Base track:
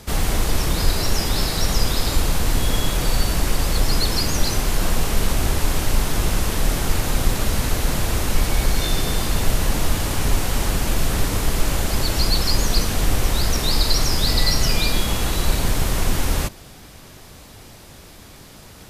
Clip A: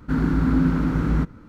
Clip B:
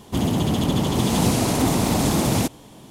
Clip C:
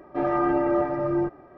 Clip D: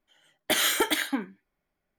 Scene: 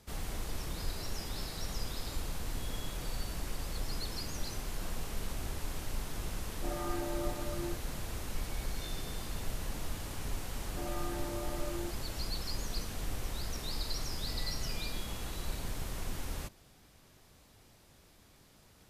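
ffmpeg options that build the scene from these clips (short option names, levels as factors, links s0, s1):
-filter_complex "[3:a]asplit=2[s0][s1];[0:a]volume=0.119[s2];[s1]acompressor=threshold=0.0501:ratio=6:attack=3.2:release=140:knee=1:detection=peak[s3];[s0]atrim=end=1.57,asetpts=PTS-STARTPTS,volume=0.158,afade=t=in:d=0.004:c=hsin,afade=t=out:st=1.566:d=0.004:c=hsin,adelay=6470[s4];[s3]atrim=end=1.57,asetpts=PTS-STARTPTS,volume=0.266,afade=t=in:d=0.004:c=hsin,afade=t=out:st=1.566:d=0.004:c=hsin,adelay=10620[s5];[s2][s4][s5]amix=inputs=3:normalize=0"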